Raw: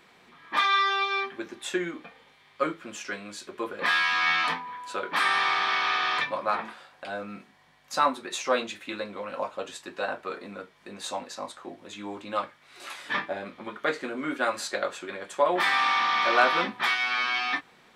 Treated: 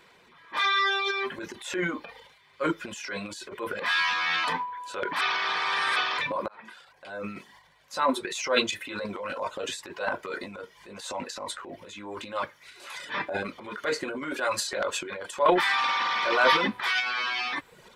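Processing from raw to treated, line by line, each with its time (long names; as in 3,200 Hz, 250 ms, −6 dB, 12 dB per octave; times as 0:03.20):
0:05.21–0:05.96: reverse
0:06.48–0:07.33: fade in
whole clip: reverb reduction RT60 0.62 s; comb filter 2 ms, depth 35%; transient designer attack −6 dB, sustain +11 dB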